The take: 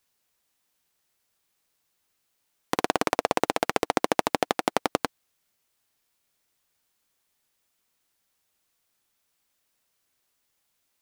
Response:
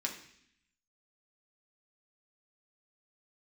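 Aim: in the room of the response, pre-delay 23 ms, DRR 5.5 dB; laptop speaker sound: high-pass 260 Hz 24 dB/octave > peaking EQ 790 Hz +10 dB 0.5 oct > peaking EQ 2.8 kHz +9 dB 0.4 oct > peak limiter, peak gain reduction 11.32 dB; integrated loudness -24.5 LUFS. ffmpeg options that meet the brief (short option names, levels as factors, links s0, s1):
-filter_complex "[0:a]asplit=2[s0][s1];[1:a]atrim=start_sample=2205,adelay=23[s2];[s1][s2]afir=irnorm=-1:irlink=0,volume=0.398[s3];[s0][s3]amix=inputs=2:normalize=0,highpass=f=260:w=0.5412,highpass=f=260:w=1.3066,equalizer=f=790:t=o:w=0.5:g=10,equalizer=f=2800:t=o:w=0.4:g=9,volume=1.58,alimiter=limit=0.447:level=0:latency=1"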